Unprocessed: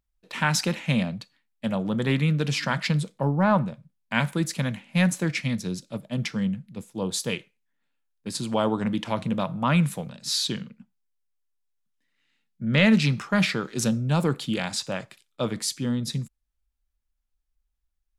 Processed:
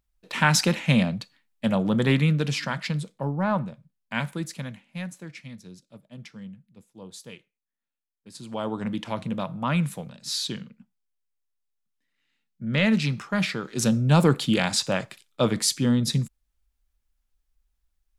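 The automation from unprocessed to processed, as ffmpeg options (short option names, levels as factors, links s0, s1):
-af "volume=14.1,afade=t=out:st=2:d=0.76:silence=0.421697,afade=t=out:st=4.17:d=0.93:silence=0.298538,afade=t=in:st=8.29:d=0.6:silence=0.266073,afade=t=in:st=13.62:d=0.51:silence=0.398107"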